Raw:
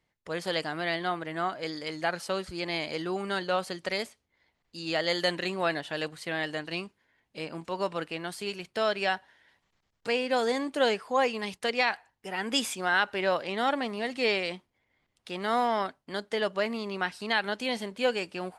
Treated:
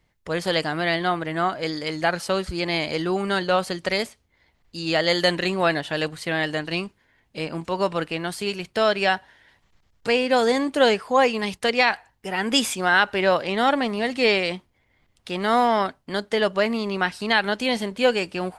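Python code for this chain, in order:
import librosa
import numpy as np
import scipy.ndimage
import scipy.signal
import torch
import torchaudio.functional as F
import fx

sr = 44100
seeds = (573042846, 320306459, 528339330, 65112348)

y = fx.low_shelf(x, sr, hz=100.0, db=11.5)
y = F.gain(torch.from_numpy(y), 7.0).numpy()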